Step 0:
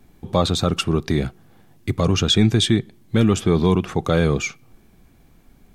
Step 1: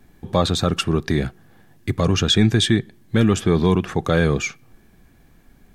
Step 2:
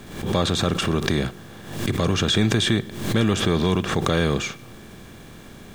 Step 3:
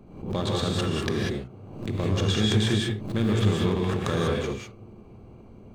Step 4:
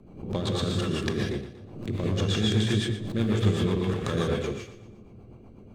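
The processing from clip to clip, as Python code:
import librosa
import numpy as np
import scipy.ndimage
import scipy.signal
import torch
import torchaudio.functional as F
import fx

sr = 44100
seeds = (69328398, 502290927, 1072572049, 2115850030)

y1 = fx.peak_eq(x, sr, hz=1700.0, db=8.0, octaves=0.22)
y2 = fx.bin_compress(y1, sr, power=0.6)
y2 = fx.quant_dither(y2, sr, seeds[0], bits=8, dither='none')
y2 = fx.pre_swell(y2, sr, db_per_s=76.0)
y2 = y2 * 10.0 ** (-6.0 / 20.0)
y3 = fx.wiener(y2, sr, points=25)
y3 = fx.rev_gated(y3, sr, seeds[1], gate_ms=220, shape='rising', drr_db=-2.0)
y3 = fx.end_taper(y3, sr, db_per_s=120.0)
y3 = y3 * 10.0 ** (-7.0 / 20.0)
y4 = fx.rotary(y3, sr, hz=8.0)
y4 = fx.echo_feedback(y4, sr, ms=118, feedback_pct=43, wet_db=-13)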